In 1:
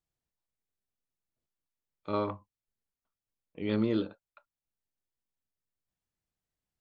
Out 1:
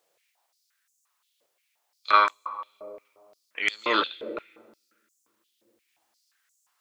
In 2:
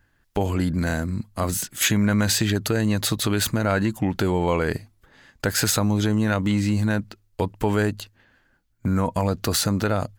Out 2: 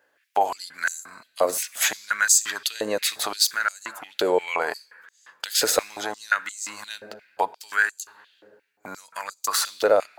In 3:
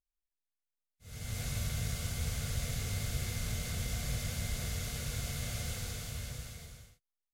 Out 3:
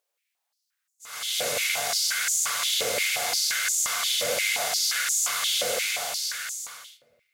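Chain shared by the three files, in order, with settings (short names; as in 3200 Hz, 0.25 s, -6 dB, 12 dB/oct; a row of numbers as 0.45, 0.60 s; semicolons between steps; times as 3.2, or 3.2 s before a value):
dynamic EQ 3100 Hz, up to -4 dB, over -46 dBFS, Q 2.3; shoebox room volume 3100 m³, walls mixed, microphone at 0.35 m; stepped high-pass 5.7 Hz 520–6900 Hz; match loudness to -24 LUFS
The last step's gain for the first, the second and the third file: +18.0, -0.5, +13.5 dB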